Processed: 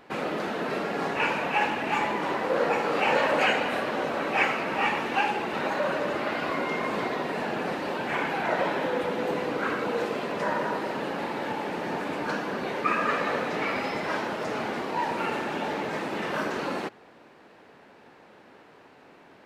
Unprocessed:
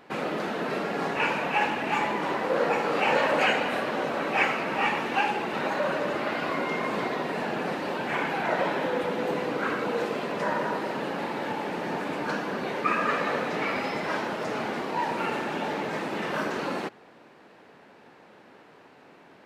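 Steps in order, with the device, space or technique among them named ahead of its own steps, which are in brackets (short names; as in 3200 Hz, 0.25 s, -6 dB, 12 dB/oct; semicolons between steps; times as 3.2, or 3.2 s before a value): low shelf boost with a cut just above (low shelf 79 Hz +7 dB; bell 160 Hz -2.5 dB 1 oct)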